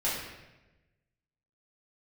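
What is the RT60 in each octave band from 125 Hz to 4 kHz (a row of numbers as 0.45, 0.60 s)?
1.5, 1.3, 1.2, 0.95, 1.0, 0.85 s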